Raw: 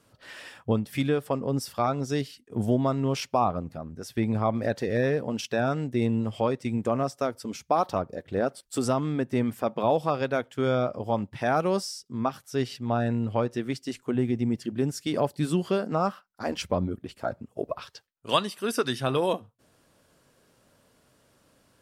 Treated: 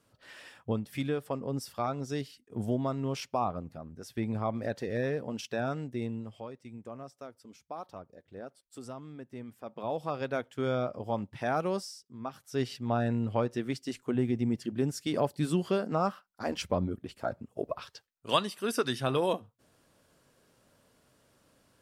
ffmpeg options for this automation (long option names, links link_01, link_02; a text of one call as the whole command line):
ffmpeg -i in.wav -af "volume=16.5dB,afade=type=out:start_time=5.72:duration=0.74:silence=0.281838,afade=type=in:start_time=9.59:duration=0.76:silence=0.251189,afade=type=out:start_time=11.67:duration=0.52:silence=0.375837,afade=type=in:start_time=12.19:duration=0.44:silence=0.281838" out.wav